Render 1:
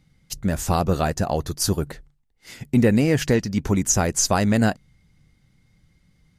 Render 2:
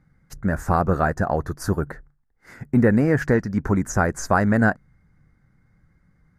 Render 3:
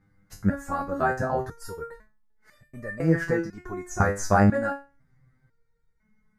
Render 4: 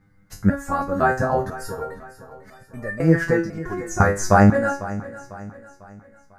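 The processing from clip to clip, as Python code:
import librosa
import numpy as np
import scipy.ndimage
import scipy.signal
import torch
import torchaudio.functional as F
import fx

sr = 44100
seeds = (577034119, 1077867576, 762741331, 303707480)

y1 = fx.high_shelf_res(x, sr, hz=2200.0, db=-11.5, q=3.0)
y2 = fx.resonator_held(y1, sr, hz=2.0, low_hz=100.0, high_hz=600.0)
y2 = y2 * librosa.db_to_amplitude(7.5)
y3 = fx.echo_feedback(y2, sr, ms=498, feedback_pct=43, wet_db=-16)
y3 = y3 * librosa.db_to_amplitude(5.5)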